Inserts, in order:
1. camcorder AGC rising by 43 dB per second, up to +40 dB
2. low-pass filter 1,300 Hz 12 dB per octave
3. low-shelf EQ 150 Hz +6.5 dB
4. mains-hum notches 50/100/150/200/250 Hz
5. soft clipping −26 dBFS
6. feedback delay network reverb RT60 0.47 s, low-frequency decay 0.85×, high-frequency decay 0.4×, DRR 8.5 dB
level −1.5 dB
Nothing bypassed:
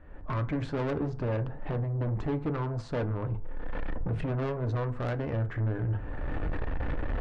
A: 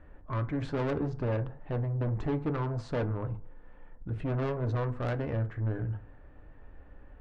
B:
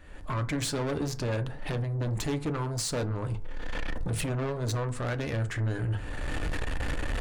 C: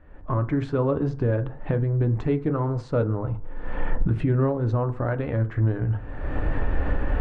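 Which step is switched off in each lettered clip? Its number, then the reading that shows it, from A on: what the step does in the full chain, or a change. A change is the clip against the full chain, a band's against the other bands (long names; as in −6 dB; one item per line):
1, change in crest factor +2.5 dB
2, 4 kHz band +13.5 dB
5, distortion level −7 dB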